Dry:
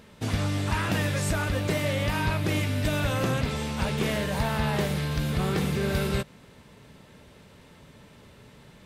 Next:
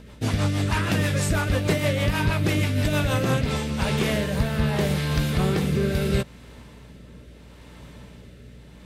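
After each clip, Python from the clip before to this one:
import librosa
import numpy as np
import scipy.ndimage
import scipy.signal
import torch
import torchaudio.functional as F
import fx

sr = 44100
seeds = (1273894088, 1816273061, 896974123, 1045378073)

y = fx.rotary_switch(x, sr, hz=6.3, then_hz=0.75, switch_at_s=3.08)
y = fx.add_hum(y, sr, base_hz=60, snr_db=23)
y = F.gain(torch.from_numpy(y), 5.5).numpy()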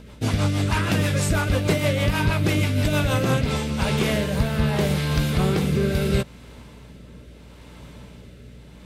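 y = fx.notch(x, sr, hz=1800.0, q=20.0)
y = F.gain(torch.from_numpy(y), 1.5).numpy()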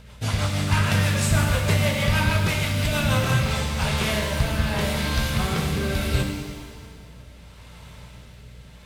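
y = fx.peak_eq(x, sr, hz=310.0, db=-14.0, octaves=1.1)
y = fx.rev_shimmer(y, sr, seeds[0], rt60_s=1.5, semitones=7, shimmer_db=-8, drr_db=2.5)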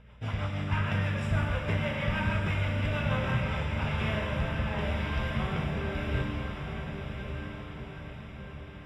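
y = scipy.signal.savgol_filter(x, 25, 4, mode='constant')
y = fx.echo_diffused(y, sr, ms=1170, feedback_pct=51, wet_db=-6)
y = F.gain(torch.from_numpy(y), -8.0).numpy()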